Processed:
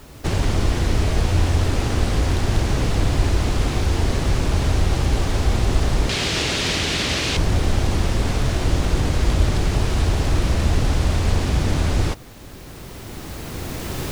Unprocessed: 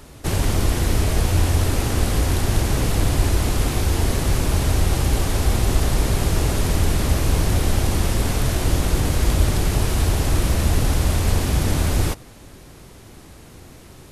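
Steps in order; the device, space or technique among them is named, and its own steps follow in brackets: low-pass 6.3 kHz 12 dB/octave; 6.09–7.37 s: frequency weighting D; cheap recorder with automatic gain (white noise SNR 35 dB; recorder AGC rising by 8.4 dB/s)

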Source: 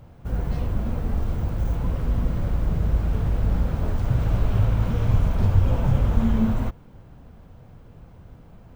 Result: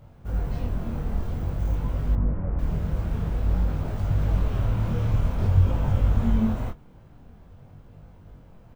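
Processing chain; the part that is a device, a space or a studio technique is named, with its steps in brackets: double-tracked vocal (doubling 21 ms -11.5 dB; chorus 0.5 Hz, delay 19.5 ms, depth 7.5 ms); 2.15–2.59 s: Bessel low-pass 1.4 kHz, order 8

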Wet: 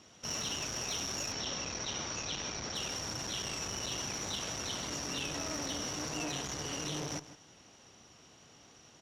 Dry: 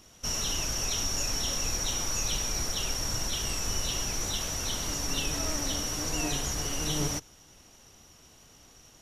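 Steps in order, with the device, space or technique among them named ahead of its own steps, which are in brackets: valve radio (band-pass 110–5500 Hz; valve stage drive 26 dB, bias 0.25; transformer saturation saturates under 690 Hz); 1.32–2.75 s: low-pass 6.1 kHz 24 dB/octave; echo from a far wall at 27 m, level -14 dB

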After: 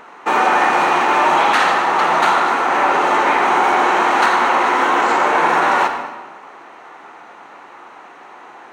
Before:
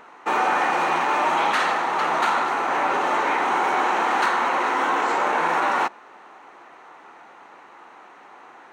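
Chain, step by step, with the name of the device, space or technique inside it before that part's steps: saturated reverb return (on a send at -5.5 dB: reverberation RT60 1.2 s, pre-delay 50 ms + saturation -13.5 dBFS, distortion -20 dB); on the sum: trim +6 dB

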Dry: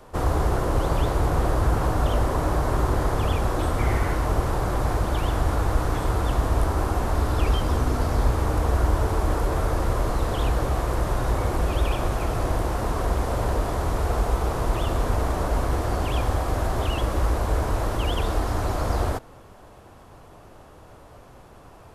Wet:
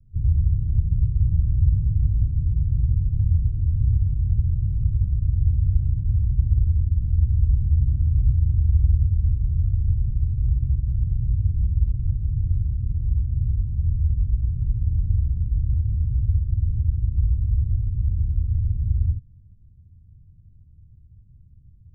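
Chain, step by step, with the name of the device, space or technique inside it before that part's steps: the neighbour's flat through the wall (low-pass 150 Hz 24 dB/octave; peaking EQ 83 Hz +5.5 dB 0.58 oct); dynamic bell 110 Hz, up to +4 dB, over -31 dBFS, Q 1.2

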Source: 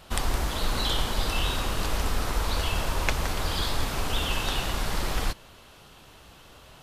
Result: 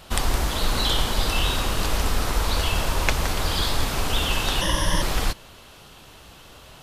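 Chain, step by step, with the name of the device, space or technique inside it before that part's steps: exciter from parts (in parallel at -13.5 dB: high-pass 2 kHz + saturation -27 dBFS, distortion -14 dB); 4.61–5.02 s: on the sum: rippled EQ curve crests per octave 1.2, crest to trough 16 dB; trim +4 dB

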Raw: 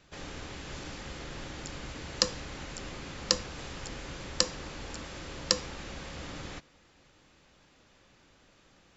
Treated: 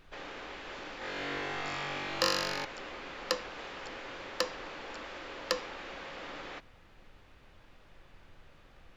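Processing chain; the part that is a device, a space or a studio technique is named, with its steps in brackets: aircraft cabin announcement (band-pass 410–3100 Hz; saturation -15.5 dBFS, distortion -16 dB; brown noise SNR 14 dB); 0.99–2.65 s: flutter echo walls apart 3.6 m, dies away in 1.3 s; trim +2.5 dB

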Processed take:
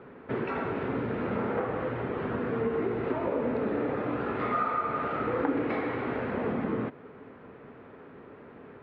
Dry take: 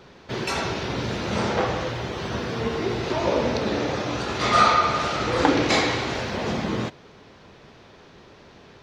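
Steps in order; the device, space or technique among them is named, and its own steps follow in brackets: bass amplifier (compression 4:1, threshold -28 dBFS, peak gain reduction 13.5 dB; cabinet simulation 61–2200 Hz, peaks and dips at 75 Hz -5 dB, 260 Hz +9 dB, 450 Hz +7 dB, 1.3 kHz +4 dB); trim -2.5 dB

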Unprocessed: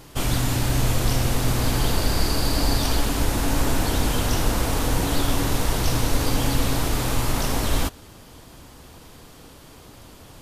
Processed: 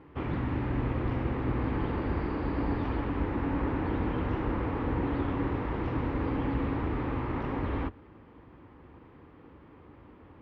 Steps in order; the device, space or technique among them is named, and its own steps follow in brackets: sub-octave bass pedal (octave divider, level -4 dB; cabinet simulation 68–2000 Hz, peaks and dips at 130 Hz -5 dB, 180 Hz -3 dB, 320 Hz +4 dB, 660 Hz -8 dB, 1.5 kHz -5 dB); trim -5 dB

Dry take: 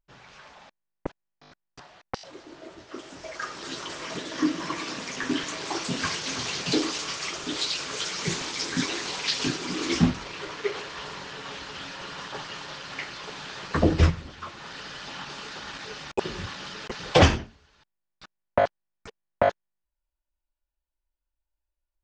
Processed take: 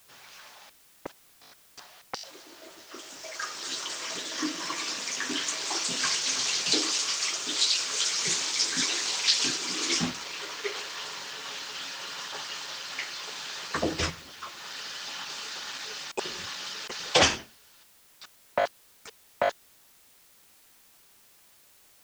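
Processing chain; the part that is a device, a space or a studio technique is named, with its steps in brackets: turntable without a phono preamp (RIAA curve recording; white noise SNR 26 dB); trim -3 dB

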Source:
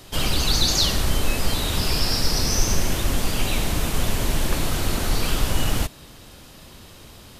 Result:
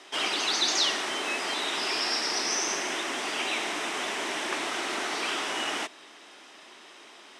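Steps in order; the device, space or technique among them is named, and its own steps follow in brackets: phone speaker on a table (cabinet simulation 350–7600 Hz, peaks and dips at 510 Hz -10 dB, 2 kHz +4 dB, 4.4 kHz -8 dB, 7 kHz -6 dB)

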